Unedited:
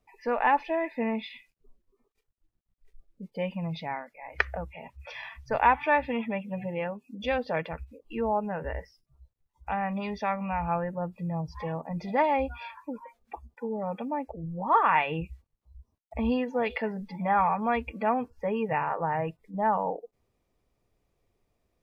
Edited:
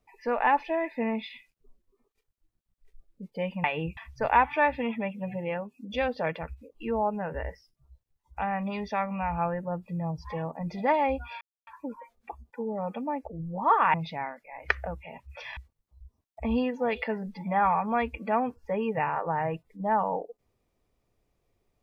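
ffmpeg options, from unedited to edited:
-filter_complex "[0:a]asplit=6[a][b][c][d][e][f];[a]atrim=end=3.642[g];[b]atrim=start=14.978:end=15.312[h];[c]atrim=start=5.268:end=12.71,asetpts=PTS-STARTPTS,afade=t=out:st=7.438:d=0.004:c=hsin,apad=pad_dur=0.26[i];[d]atrim=start=12.71:end=14.982,asetpts=PTS-STARTPTS,afade=t=in:d=0.004:c=hsin[j];[e]atrim=start=3.638:end=5.272[k];[f]atrim=start=15.308[l];[g][h]acrossfade=d=0.004:c1=hsin:c2=hsin[m];[i][j]concat=n=2:v=0:a=1[n];[m][n]acrossfade=d=0.004:c1=hsin:c2=hsin[o];[o][k]acrossfade=d=0.004:c1=hsin:c2=hsin[p];[p][l]acrossfade=d=0.004:c1=hsin:c2=hsin"

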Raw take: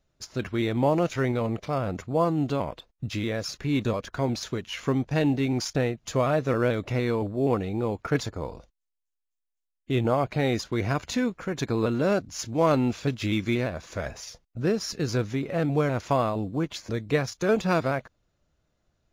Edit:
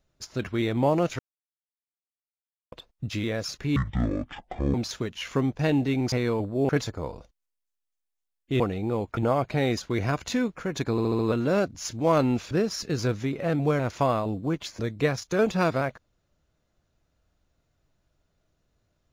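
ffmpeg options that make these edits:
-filter_complex "[0:a]asplit=14[a][b][c][d][e][f][g][h][i][j][k][l][m][n];[a]atrim=end=1.19,asetpts=PTS-STARTPTS,afade=t=out:st=1.186:d=0.004:c=hsin[o];[b]atrim=start=1.19:end=2.72,asetpts=PTS-STARTPTS,volume=0[p];[c]atrim=start=2.72:end=3.764,asetpts=PTS-STARTPTS,afade=t=in:d=0.004:c=hsin[q];[d]atrim=start=3.76:end=4.26,asetpts=PTS-STARTPTS,asetrate=22491,aresample=44100,atrim=end_sample=43235,asetpts=PTS-STARTPTS[r];[e]atrim=start=4.256:end=5.642[s];[f]atrim=start=6.938:end=7.512[t];[g]atrim=start=8.078:end=9.992[u];[h]atrim=start=7.508:end=8.082[v];[i]atrim=start=9.988:end=11.802[w];[j]atrim=start=11.728:end=11.802[x];[k]atrim=start=11.728:end=11.802[y];[l]atrim=start=11.728:end=11.802[z];[m]atrim=start=11.728:end=13.052[aa];[n]atrim=start=14.608[ab];[o][p][q]concat=n=3:v=0:a=1[ac];[ac][r]acrossfade=d=0.004:c1=hsin:c2=hsin[ad];[ad][s]acrossfade=d=0.004:c1=hsin:c2=hsin[ae];[ae][t]acrossfade=d=0.004:c1=hsin:c2=hsin[af];[af][u]acrossfade=d=0.004:c1=hsin:c2=hsin[ag];[ag][v]acrossfade=d=0.004:c1=hsin:c2=hsin[ah];[ah][w]acrossfade=d=0.004:c1=hsin:c2=hsin[ai];[ai][x]acrossfade=d=0.004:c1=hsin:c2=hsin[aj];[aj][y]acrossfade=d=0.004:c1=hsin:c2=hsin[ak];[ak][z]acrossfade=d=0.004:c1=hsin:c2=hsin[al];[al][aa]acrossfade=d=0.004:c1=hsin:c2=hsin[am];[am][ab]acrossfade=d=0.004:c1=hsin:c2=hsin"

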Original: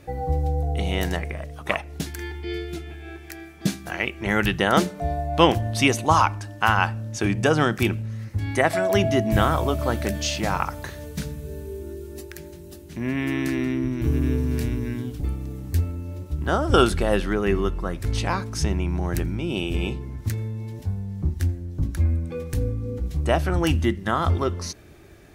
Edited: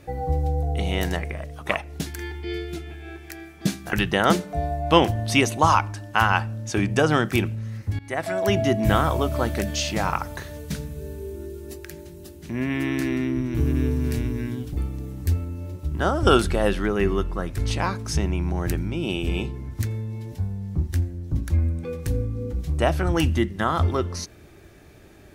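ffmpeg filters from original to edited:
-filter_complex "[0:a]asplit=3[a][b][c];[a]atrim=end=3.932[d];[b]atrim=start=4.398:end=8.46,asetpts=PTS-STARTPTS,afade=t=out:st=4.058:d=0.004:c=hsin:silence=0.105925[e];[c]atrim=start=8.46,asetpts=PTS-STARTPTS,afade=t=in:d=0.79:c=qsin:silence=0.105925[f];[e][f]concat=n=2:v=0:a=1[g];[d][g]acrossfade=d=0.004:c1=hsin:c2=hsin"

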